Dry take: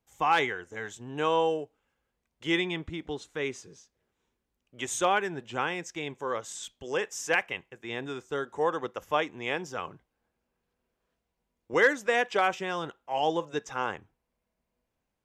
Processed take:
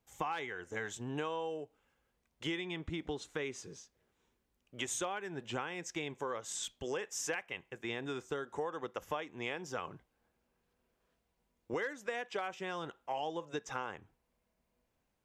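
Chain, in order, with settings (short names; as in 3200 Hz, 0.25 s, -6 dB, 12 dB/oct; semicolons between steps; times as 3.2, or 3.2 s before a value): compressor 10:1, threshold -36 dBFS, peak gain reduction 19 dB; gain +1.5 dB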